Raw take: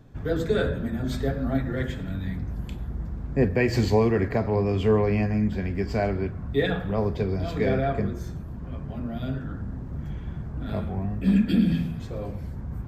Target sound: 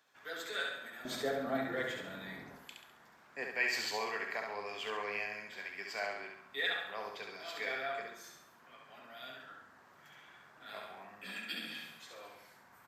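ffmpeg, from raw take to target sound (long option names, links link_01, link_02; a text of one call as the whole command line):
ffmpeg -i in.wav -af "asetnsamples=nb_out_samples=441:pad=0,asendcmd='1.05 highpass f 520;2.58 highpass f 1300',highpass=1400,aecho=1:1:68|136|204|272|340|408:0.631|0.278|0.122|0.0537|0.0236|0.0104,volume=-2.5dB" out.wav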